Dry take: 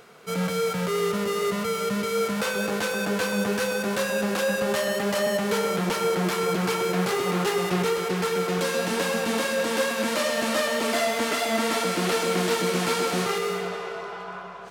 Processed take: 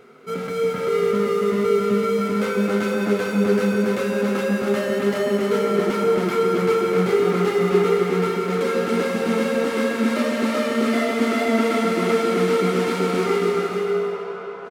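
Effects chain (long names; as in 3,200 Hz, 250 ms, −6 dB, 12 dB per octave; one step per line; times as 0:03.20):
bass and treble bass +2 dB, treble −5 dB
hollow resonant body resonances 260/390/1,300/2,100 Hz, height 12 dB, ringing for 40 ms
flanger 0.19 Hz, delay 7.9 ms, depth 2.2 ms, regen −46%
bouncing-ball delay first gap 280 ms, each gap 0.6×, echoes 5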